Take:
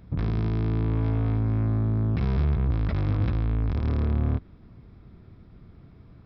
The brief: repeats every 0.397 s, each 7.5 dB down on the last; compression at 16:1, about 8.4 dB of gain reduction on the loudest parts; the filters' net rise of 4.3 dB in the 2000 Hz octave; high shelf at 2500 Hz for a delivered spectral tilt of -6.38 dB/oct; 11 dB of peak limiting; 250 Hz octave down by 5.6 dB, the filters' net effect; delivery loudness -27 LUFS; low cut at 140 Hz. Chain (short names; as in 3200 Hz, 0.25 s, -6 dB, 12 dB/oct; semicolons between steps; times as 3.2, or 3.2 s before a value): HPF 140 Hz; bell 250 Hz -6.5 dB; bell 2000 Hz +7.5 dB; high shelf 2500 Hz -4.5 dB; compressor 16:1, threshold -35 dBFS; limiter -35.5 dBFS; feedback echo 0.397 s, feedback 42%, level -7.5 dB; gain +19.5 dB